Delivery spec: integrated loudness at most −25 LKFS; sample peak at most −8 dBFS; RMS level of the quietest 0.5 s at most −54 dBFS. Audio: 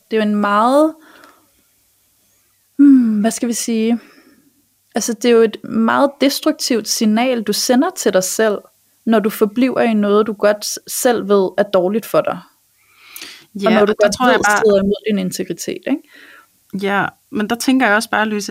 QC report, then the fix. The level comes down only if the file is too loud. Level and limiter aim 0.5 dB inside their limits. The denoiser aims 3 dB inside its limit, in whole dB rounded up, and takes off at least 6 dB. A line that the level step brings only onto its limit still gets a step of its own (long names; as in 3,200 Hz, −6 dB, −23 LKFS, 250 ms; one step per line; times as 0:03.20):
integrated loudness −15.5 LKFS: out of spec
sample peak −2.5 dBFS: out of spec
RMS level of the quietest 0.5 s −58 dBFS: in spec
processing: level −10 dB